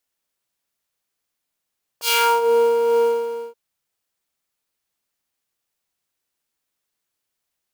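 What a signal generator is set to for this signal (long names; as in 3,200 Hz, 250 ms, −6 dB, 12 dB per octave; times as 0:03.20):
subtractive patch with tremolo A#4, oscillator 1 triangle, oscillator 2 triangle, interval +12 semitones, sub −22.5 dB, noise −24.5 dB, filter highpass, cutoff 310 Hz, Q 1.4, filter envelope 4 octaves, filter decay 0.50 s, filter sustain 5%, attack 71 ms, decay 0.33 s, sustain −20 dB, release 0.59 s, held 0.94 s, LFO 2.2 Hz, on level 3.5 dB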